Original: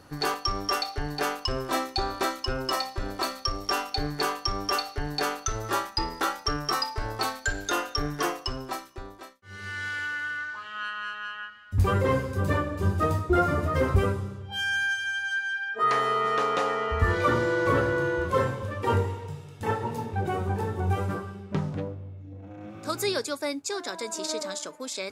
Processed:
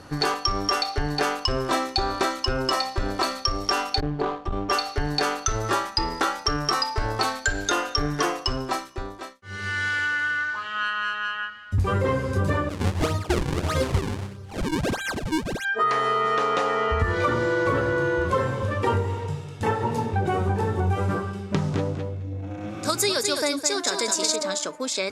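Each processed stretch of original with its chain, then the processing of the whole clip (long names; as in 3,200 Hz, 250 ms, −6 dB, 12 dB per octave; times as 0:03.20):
0:04.00–0:04.70: running median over 25 samples + head-to-tape spacing loss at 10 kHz 26 dB + saturating transformer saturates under 84 Hz
0:12.69–0:15.65: sample-and-hold swept by an LFO 39×, swing 160% 1.6 Hz + expander for the loud parts, over −33 dBFS
0:21.33–0:24.36: high-shelf EQ 4,000 Hz +9.5 dB + repeating echo 212 ms, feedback 15%, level −7.5 dB
whole clip: low-pass filter 9,800 Hz 12 dB per octave; downward compressor, threshold −27 dBFS; level +7.5 dB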